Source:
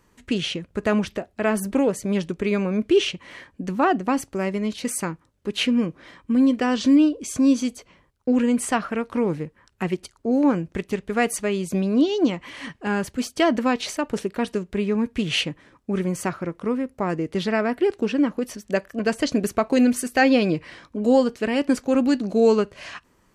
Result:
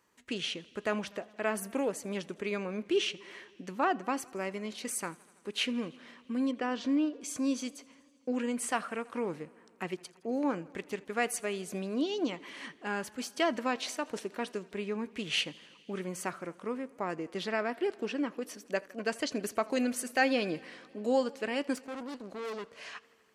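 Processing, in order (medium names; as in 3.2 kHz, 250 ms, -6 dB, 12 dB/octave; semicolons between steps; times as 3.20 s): 6.51–7.21 s: low-pass 2.2 kHz 6 dB/octave; 21.76–22.72 s: valve stage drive 26 dB, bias 0.8; high-pass 480 Hz 6 dB/octave; modulated delay 82 ms, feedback 78%, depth 66 cents, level -24 dB; trim -7 dB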